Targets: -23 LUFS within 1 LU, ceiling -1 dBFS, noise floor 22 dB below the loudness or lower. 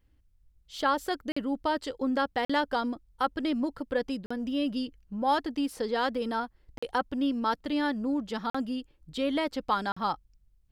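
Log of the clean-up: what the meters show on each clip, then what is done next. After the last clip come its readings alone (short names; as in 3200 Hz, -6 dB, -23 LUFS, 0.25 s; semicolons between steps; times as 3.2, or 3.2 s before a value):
dropouts 6; longest dropout 45 ms; loudness -30.5 LUFS; peak -13.5 dBFS; loudness target -23.0 LUFS
-> interpolate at 1.32/2.45/4.26/6.78/8.5/9.92, 45 ms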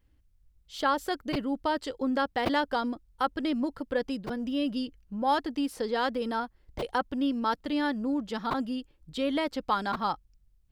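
dropouts 0; loudness -30.5 LUFS; peak -13.5 dBFS; loudness target -23.0 LUFS
-> gain +7.5 dB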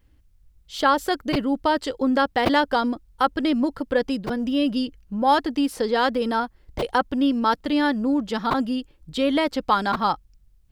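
loudness -23.0 LUFS; peak -6.0 dBFS; noise floor -58 dBFS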